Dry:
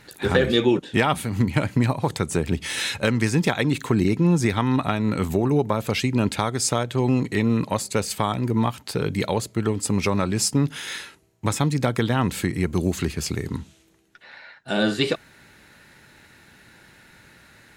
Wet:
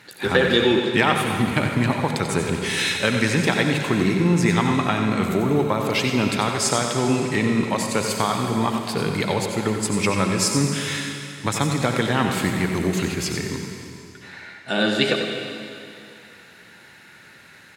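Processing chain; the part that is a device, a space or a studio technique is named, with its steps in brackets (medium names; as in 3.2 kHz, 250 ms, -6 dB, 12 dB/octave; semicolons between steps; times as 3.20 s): PA in a hall (high-pass 110 Hz; peaking EQ 2.3 kHz +4.5 dB 2.5 oct; delay 92 ms -9 dB; reverberation RT60 2.7 s, pre-delay 63 ms, DRR 4 dB); trim -1 dB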